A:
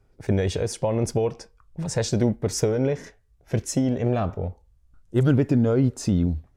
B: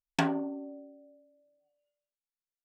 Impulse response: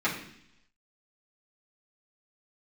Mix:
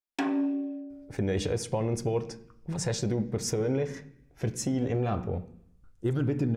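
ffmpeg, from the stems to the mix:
-filter_complex "[0:a]bandreject=frequency=620:width=12,adelay=900,volume=-3dB,asplit=2[link_01][link_02];[link_02]volume=-18.5dB[link_03];[1:a]lowshelf=frequency=200:width_type=q:width=3:gain=-12,volume=-4.5dB,asplit=2[link_04][link_05];[link_05]volume=-11dB[link_06];[2:a]atrim=start_sample=2205[link_07];[link_03][link_06]amix=inputs=2:normalize=0[link_08];[link_08][link_07]afir=irnorm=-1:irlink=0[link_09];[link_01][link_04][link_09]amix=inputs=3:normalize=0,alimiter=limit=-18.5dB:level=0:latency=1:release=227"

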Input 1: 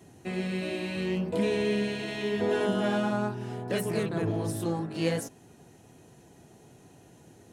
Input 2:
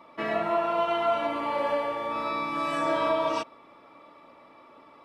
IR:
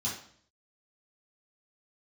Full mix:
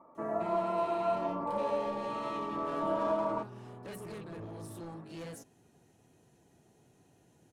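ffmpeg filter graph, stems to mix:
-filter_complex "[0:a]asoftclip=type=tanh:threshold=-29dB,adelay=150,volume=-10.5dB[link_01];[1:a]lowpass=frequency=1200:width=0.5412,lowpass=frequency=1200:width=1.3066,volume=-5dB[link_02];[link_01][link_02]amix=inputs=2:normalize=0"

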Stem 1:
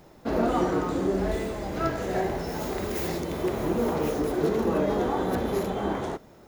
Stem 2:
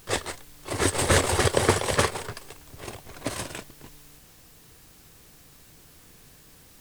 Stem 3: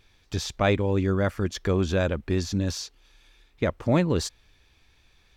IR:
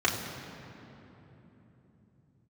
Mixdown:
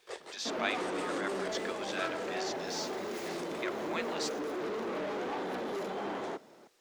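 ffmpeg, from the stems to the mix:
-filter_complex "[0:a]highpass=frequency=180:poles=1,asoftclip=type=hard:threshold=-30.5dB,adelay=200,volume=-3dB[link_01];[1:a]lowshelf=frequency=310:width_type=q:width=3:gain=-8,acompressor=threshold=-27dB:ratio=3,volume=-13dB[link_02];[2:a]highpass=1300,volume=-3.5dB[link_03];[link_01][link_02][link_03]amix=inputs=3:normalize=0,acrossover=split=180 7600:gain=0.141 1 0.224[link_04][link_05][link_06];[link_04][link_05][link_06]amix=inputs=3:normalize=0"

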